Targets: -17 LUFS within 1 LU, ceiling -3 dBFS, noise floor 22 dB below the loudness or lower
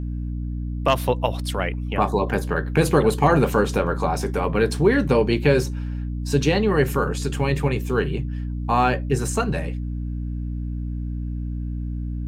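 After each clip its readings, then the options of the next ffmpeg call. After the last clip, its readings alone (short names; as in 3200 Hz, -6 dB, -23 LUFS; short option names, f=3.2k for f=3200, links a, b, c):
hum 60 Hz; harmonics up to 300 Hz; hum level -25 dBFS; loudness -22.5 LUFS; peak -5.0 dBFS; loudness target -17.0 LUFS
-> -af "bandreject=f=60:t=h:w=4,bandreject=f=120:t=h:w=4,bandreject=f=180:t=h:w=4,bandreject=f=240:t=h:w=4,bandreject=f=300:t=h:w=4"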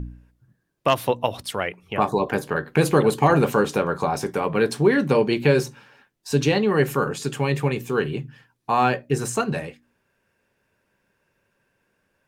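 hum none; loudness -22.0 LUFS; peak -6.0 dBFS; loudness target -17.0 LUFS
-> -af "volume=5dB,alimiter=limit=-3dB:level=0:latency=1"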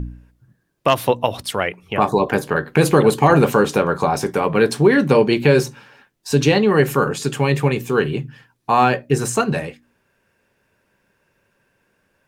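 loudness -17.5 LUFS; peak -3.0 dBFS; noise floor -67 dBFS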